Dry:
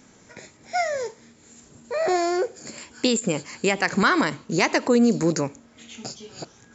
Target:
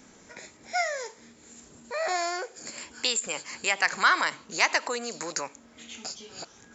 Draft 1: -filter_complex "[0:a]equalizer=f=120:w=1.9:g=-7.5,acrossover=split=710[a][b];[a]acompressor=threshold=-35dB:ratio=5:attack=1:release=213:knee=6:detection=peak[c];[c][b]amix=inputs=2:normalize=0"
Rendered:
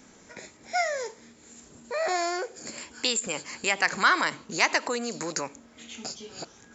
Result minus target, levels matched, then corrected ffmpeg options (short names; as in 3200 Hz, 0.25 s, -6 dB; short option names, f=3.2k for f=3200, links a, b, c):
compressor: peak gain reduction -7.5 dB
-filter_complex "[0:a]equalizer=f=120:w=1.9:g=-7.5,acrossover=split=710[a][b];[a]acompressor=threshold=-44.5dB:ratio=5:attack=1:release=213:knee=6:detection=peak[c];[c][b]amix=inputs=2:normalize=0"